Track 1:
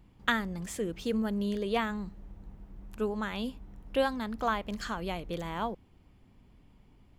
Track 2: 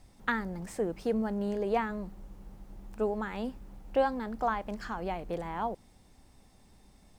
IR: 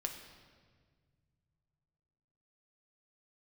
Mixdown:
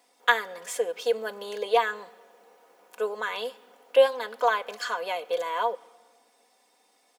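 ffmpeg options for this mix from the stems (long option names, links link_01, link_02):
-filter_complex "[0:a]volume=2.5dB,asplit=2[link_01][link_02];[link_02]volume=-12dB[link_03];[1:a]adelay=2.2,volume=0dB,asplit=2[link_04][link_05];[link_05]apad=whole_len=316853[link_06];[link_01][link_06]sidechaingate=range=-33dB:threshold=-52dB:ratio=16:detection=peak[link_07];[2:a]atrim=start_sample=2205[link_08];[link_03][link_08]afir=irnorm=-1:irlink=0[link_09];[link_07][link_04][link_09]amix=inputs=3:normalize=0,highpass=frequency=420:width=0.5412,highpass=frequency=420:width=1.3066,aecho=1:1:4.1:0.61"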